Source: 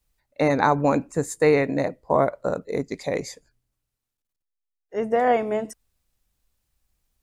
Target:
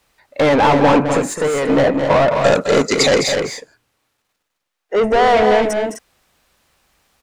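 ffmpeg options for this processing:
-filter_complex "[0:a]asplit=2[a][b];[b]highpass=f=720:p=1,volume=31dB,asoftclip=type=tanh:threshold=-3.5dB[c];[a][c]amix=inputs=2:normalize=0,lowpass=f=1.9k:p=1,volume=-6dB,asettb=1/sr,asplit=3[d][e][f];[d]atrim=end=1.024[g];[e]atrim=start=1.02:end=1.7,asetpts=PTS-STARTPTS,afade=t=in:d=0.004:c=qsin,afade=t=out:st=0.676:d=0.004:c=qsin,acompressor=threshold=-17dB:ratio=6[h];[f]atrim=start=1.696[i];[g][h]acrossfade=d=0.004:c1=hsin:c2=qsin[j];[j][i]acrossfade=d=0.004:c1=qsin:c2=hsin,asplit=3[k][l][m];[k]afade=t=out:st=5.02:d=0.02[n];[l]asubboost=boost=3.5:cutoff=100,afade=t=in:st=5.02:d=0.02,afade=t=out:st=5.42:d=0.02[o];[m]afade=t=in:st=5.42:d=0.02[p];[n][o][p]amix=inputs=3:normalize=0,asoftclip=type=tanh:threshold=-7.5dB,asettb=1/sr,asplit=3[q][r][s];[q]atrim=end=2.394[t];[r]atrim=start=2.39:end=3.15,asetpts=PTS-STARTPTS,afade=t=in:d=0.004:c=qsin,afade=t=out:st=0.756:d=0.004:c=qsin,equalizer=f=6.8k:t=o:w=2.3:g=14[u];[s]atrim=start=3.146[v];[t][u]acrossfade=d=0.004:c1=hsin:c2=qsin[w];[w][v]acrossfade=d=0.004:c1=qsin:c2=hsin,asplit=2[x][y];[y]aecho=0:1:209.9|253.6:0.398|0.447[z];[x][z]amix=inputs=2:normalize=0"

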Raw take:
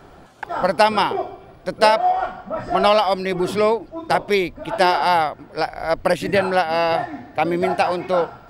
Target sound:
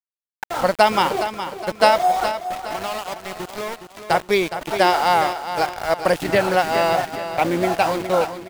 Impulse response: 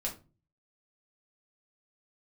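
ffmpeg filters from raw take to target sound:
-filter_complex "[0:a]asettb=1/sr,asplit=3[a][b][c];[a]atrim=end=2.354[d];[b]atrim=start=2.35:end=4.01,asetpts=PTS-STARTPTS,afade=t=in:d=0.004:c=qsin,afade=t=out:st=1.656:d=0.004:c=qsin,acompressor=threshold=-34dB:ratio=2[e];[c]atrim=start=4.006[f];[d][e]acrossfade=d=0.004:c1=hsin:c2=qsin[g];[g][f]acrossfade=d=0.004:c1=qsin:c2=hsin,aeval=exprs='val(0)*gte(abs(val(0)),0.0473)':c=same,aecho=1:1:415|830|1245|1660:0.316|0.13|0.0532|0.0218"

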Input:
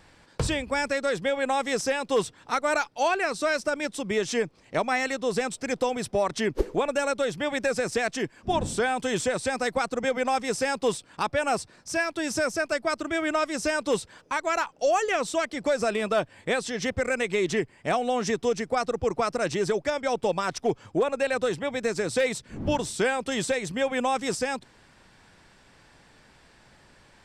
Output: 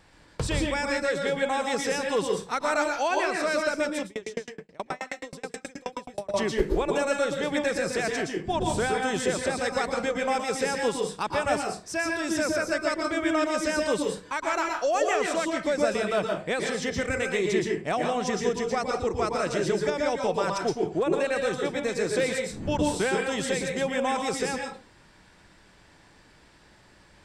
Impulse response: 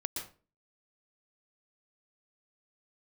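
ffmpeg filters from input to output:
-filter_complex "[1:a]atrim=start_sample=2205[a];[0:a][a]afir=irnorm=-1:irlink=0,asettb=1/sr,asplit=3[b][c][d];[b]atrim=end=4.054[e];[c]atrim=start=4.05:end=6.34,asetpts=PTS-STARTPTS,afade=t=in:d=0.004:c=qsin,afade=t=out:st=2.286:d=0.004:c=qsin,aeval=exprs='val(0)*pow(10,-36*if(lt(mod(9.4*n/s,1),2*abs(9.4)/1000),1-mod(9.4*n/s,1)/(2*abs(9.4)/1000),(mod(9.4*n/s,1)-2*abs(9.4)/1000)/(1-2*abs(9.4)/1000))/20)':c=same[f];[d]atrim=start=6.336[g];[e][f]acrossfade=d=0.004:c1=hsin:c2=qsin[h];[h][g]acrossfade=d=0.004:c1=qsin:c2=hsin,volume=-1.5dB"

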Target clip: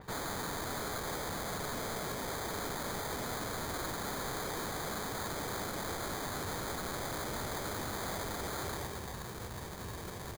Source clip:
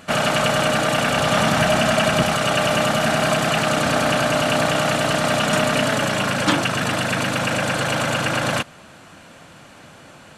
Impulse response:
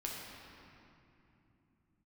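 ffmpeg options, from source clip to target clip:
-af "asetrate=30296,aresample=44100,atempo=1.45565,aecho=1:1:120|240|360|480|600:0.168|0.0923|0.0508|0.0279|0.0154,areverse,acompressor=threshold=-30dB:ratio=6,areverse,lowshelf=f=68:g=11,acrusher=samples=16:mix=1:aa=0.000001,aeval=exprs='0.02*(abs(mod(val(0)/0.02+3,4)-2)-1)':c=same,adynamicequalizer=threshold=0.00126:dfrequency=4500:dqfactor=0.7:tfrequency=4500:tqfactor=0.7:attack=5:release=100:ratio=0.375:range=3:mode=boostabove:tftype=highshelf"

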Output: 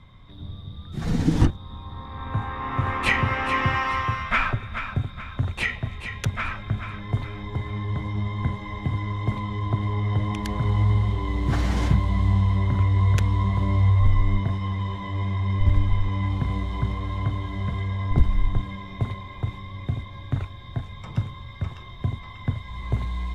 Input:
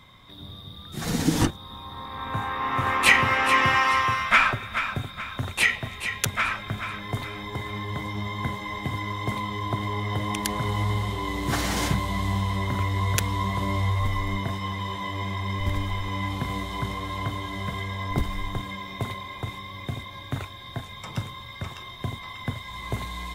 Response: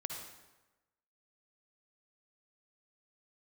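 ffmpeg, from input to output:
-af "aemphasis=mode=reproduction:type=bsi,volume=-3.5dB"

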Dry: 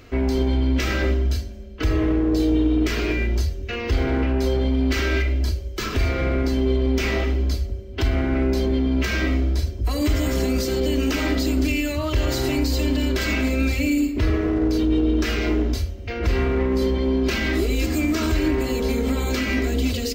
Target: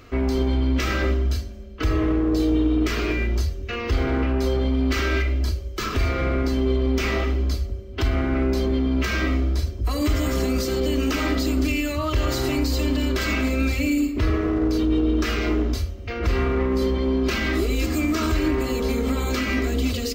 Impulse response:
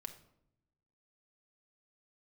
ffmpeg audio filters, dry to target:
-af "equalizer=f=1.2k:w=6:g=8,volume=-1dB"

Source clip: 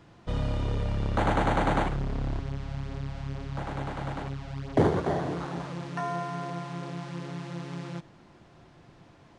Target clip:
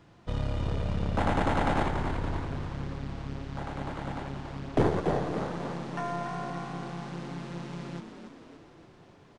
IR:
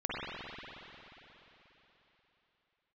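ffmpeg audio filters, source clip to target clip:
-filter_complex "[0:a]aeval=exprs='0.282*(cos(1*acos(clip(val(0)/0.282,-1,1)))-cos(1*PI/2))+0.0398*(cos(4*acos(clip(val(0)/0.282,-1,1)))-cos(4*PI/2))':c=same,asplit=8[a][b][c][d][e][f][g][h];[b]adelay=284,afreqshift=52,volume=-8dB[i];[c]adelay=568,afreqshift=104,volume=-13.2dB[j];[d]adelay=852,afreqshift=156,volume=-18.4dB[k];[e]adelay=1136,afreqshift=208,volume=-23.6dB[l];[f]adelay=1420,afreqshift=260,volume=-28.8dB[m];[g]adelay=1704,afreqshift=312,volume=-34dB[n];[h]adelay=1988,afreqshift=364,volume=-39.2dB[o];[a][i][j][k][l][m][n][o]amix=inputs=8:normalize=0,asplit=2[p][q];[1:a]atrim=start_sample=2205,adelay=11[r];[q][r]afir=irnorm=-1:irlink=0,volume=-27.5dB[s];[p][s]amix=inputs=2:normalize=0,volume=-2.5dB"

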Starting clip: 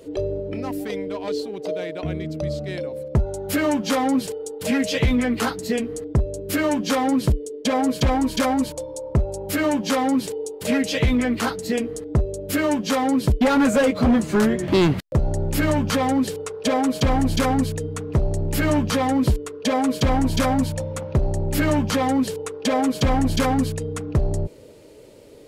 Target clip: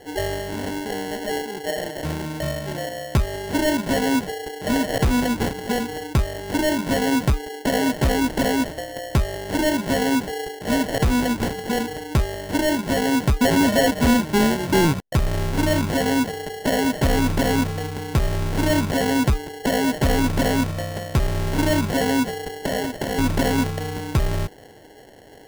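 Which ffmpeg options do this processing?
-filter_complex "[0:a]asettb=1/sr,asplit=3[a][b][c];[a]atrim=end=8.674[d];[b]atrim=start=8.67:end=9.69,asetpts=PTS-STARTPTS,afade=t=in:d=0.004:c=qsin,afade=t=out:st=1.016:d=0.004:c=qsin,equalizer=f=4.1k:w=1.8:g=9[e];[c]atrim=start=9.686[f];[d][e]acrossfade=d=0.004:c1=hsin:c2=qsin[g];[g][f]acrossfade=d=0.004:c1=qsin:c2=hsin,asplit=3[h][i][j];[h]afade=t=out:st=22.66:d=0.02[k];[i]highpass=f=620:p=1,afade=t=in:st=22.66:d=0.02,afade=t=out:st=23.17:d=0.02[l];[j]afade=t=in:st=23.17:d=0.02[m];[k][l][m]amix=inputs=3:normalize=0,acrusher=samples=36:mix=1:aa=0.000001"

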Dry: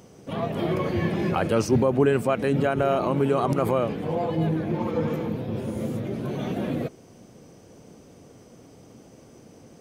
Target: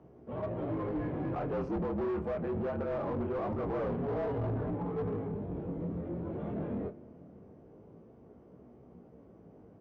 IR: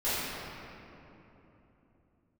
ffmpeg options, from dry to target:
-filter_complex "[0:a]flanger=delay=17:depth=6.9:speed=0.23,afreqshift=-47,highpass=f=130:p=1,asplit=2[a][b];[1:a]atrim=start_sample=2205,adelay=73[c];[b][c]afir=irnorm=-1:irlink=0,volume=-31.5dB[d];[a][d]amix=inputs=2:normalize=0,asettb=1/sr,asplit=3[e][f][g];[e]atrim=end=3.744[h];[f]atrim=start=3.74:end=4.71,asetpts=PTS-STARTPTS,afade=t=in:d=0.004:c=qsin,afade=t=out:st=0.966:d=0.004:c=qsin,acontrast=29[i];[g]atrim=start=4.706[j];[h][i]acrossfade=d=0.004:c1=hsin:c2=qsin[k];[k][j]acrossfade=d=0.004:c1=qsin:c2=hsin,asplit=2[l][m];[m]adelay=29,volume=-13dB[n];[l][n]amix=inputs=2:normalize=0,asoftclip=type=hard:threshold=-26.5dB,lowpass=1k,asplit=2[o][p];[p]asoftclip=type=tanh:threshold=-35.5dB,volume=-4dB[q];[o][q]amix=inputs=2:normalize=0,volume=-5.5dB"

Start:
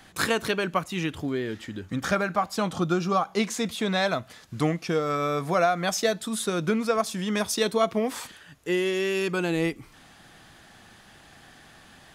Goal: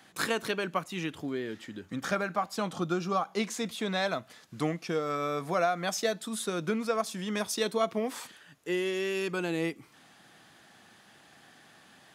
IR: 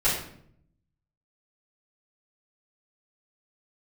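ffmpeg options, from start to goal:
-af "highpass=150,volume=-5dB"

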